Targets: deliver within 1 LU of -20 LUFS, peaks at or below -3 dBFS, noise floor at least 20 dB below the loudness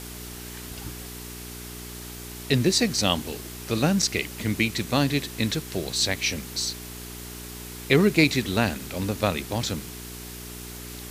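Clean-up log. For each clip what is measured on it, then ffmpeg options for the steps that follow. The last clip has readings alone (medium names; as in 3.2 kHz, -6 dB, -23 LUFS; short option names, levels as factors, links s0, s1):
hum 60 Hz; highest harmonic 420 Hz; hum level -39 dBFS; noise floor -39 dBFS; noise floor target -45 dBFS; loudness -24.5 LUFS; peak level -4.5 dBFS; loudness target -20.0 LUFS
-> -af "bandreject=f=60:t=h:w=4,bandreject=f=120:t=h:w=4,bandreject=f=180:t=h:w=4,bandreject=f=240:t=h:w=4,bandreject=f=300:t=h:w=4,bandreject=f=360:t=h:w=4,bandreject=f=420:t=h:w=4"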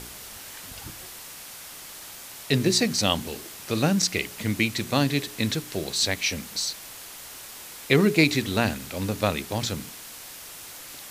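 hum not found; noise floor -42 dBFS; noise floor target -45 dBFS
-> -af "afftdn=nr=6:nf=-42"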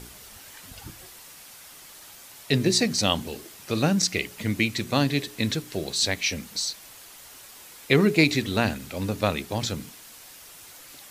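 noise floor -47 dBFS; loudness -24.5 LUFS; peak level -4.5 dBFS; loudness target -20.0 LUFS
-> -af "volume=1.68,alimiter=limit=0.708:level=0:latency=1"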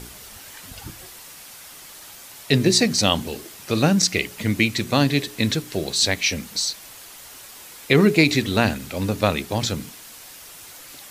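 loudness -20.5 LUFS; peak level -3.0 dBFS; noise floor -42 dBFS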